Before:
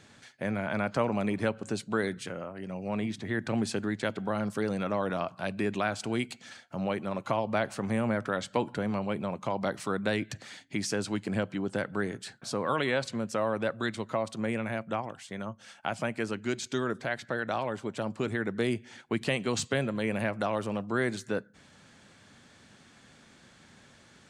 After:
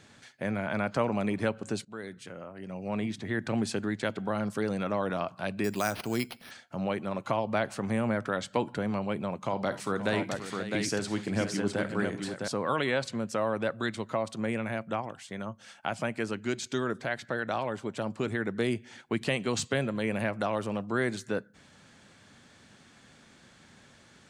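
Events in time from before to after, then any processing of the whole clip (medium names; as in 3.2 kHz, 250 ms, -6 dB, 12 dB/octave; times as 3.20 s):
1.85–2.95 s: fade in, from -16 dB
5.64–6.51 s: careless resampling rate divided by 6×, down none, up hold
9.39–12.48 s: multi-tap echo 50/65/234/530/658 ms -14/-18.5/-19/-12/-4.5 dB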